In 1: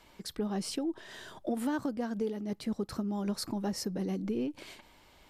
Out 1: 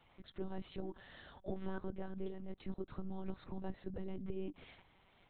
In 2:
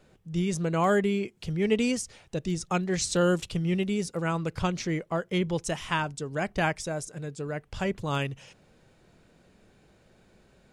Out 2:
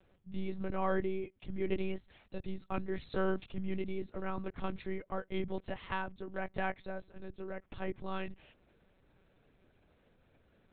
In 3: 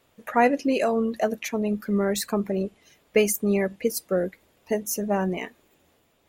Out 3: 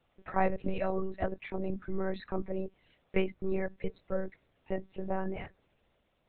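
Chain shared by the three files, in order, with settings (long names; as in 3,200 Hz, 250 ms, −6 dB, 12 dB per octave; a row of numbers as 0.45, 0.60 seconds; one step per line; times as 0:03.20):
one-pitch LPC vocoder at 8 kHz 190 Hz
dynamic equaliser 3,000 Hz, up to −6 dB, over −52 dBFS, Q 2.4
level −8 dB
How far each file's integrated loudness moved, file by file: −11.0, −10.5, −10.5 LU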